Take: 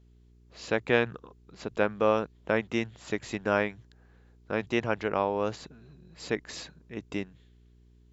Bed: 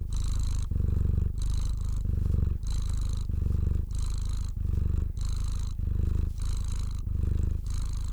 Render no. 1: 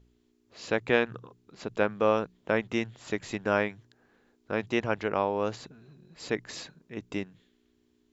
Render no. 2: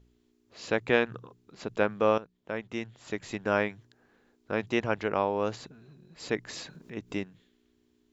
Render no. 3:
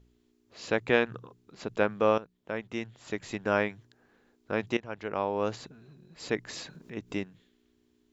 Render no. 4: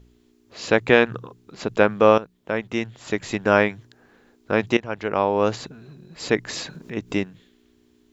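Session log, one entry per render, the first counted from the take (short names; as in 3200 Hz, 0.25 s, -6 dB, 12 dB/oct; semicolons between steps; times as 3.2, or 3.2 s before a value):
de-hum 60 Hz, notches 3
2.18–3.66 fade in, from -14 dB; 6.33–7.22 upward compressor, threshold -38 dBFS
4.77–5.44 fade in, from -17.5 dB
gain +9.5 dB; limiter -1 dBFS, peak gain reduction 2 dB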